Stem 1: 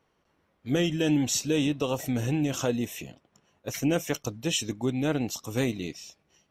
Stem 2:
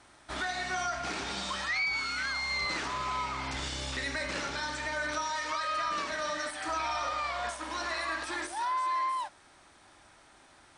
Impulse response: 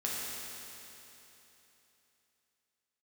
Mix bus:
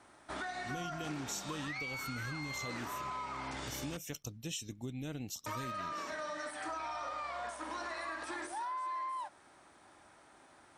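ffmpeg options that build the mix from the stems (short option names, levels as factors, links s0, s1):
-filter_complex "[0:a]equalizer=f=750:w=0.31:g=-11.5,volume=0.631[s0];[1:a]highpass=f=160:p=1,equalizer=f=4200:w=0.47:g=-8,volume=1.06,asplit=3[s1][s2][s3];[s1]atrim=end=3.97,asetpts=PTS-STARTPTS,afade=t=out:st=3.966:d=0.004:c=hsin[s4];[s2]atrim=start=3.97:end=5.46,asetpts=PTS-STARTPTS,volume=0[s5];[s3]atrim=start=5.46,asetpts=PTS-STARTPTS,afade=t=in:d=0.004:c=hsin[s6];[s4][s5][s6]concat=n=3:v=0:a=1[s7];[s0][s7]amix=inputs=2:normalize=0,acompressor=threshold=0.0126:ratio=4"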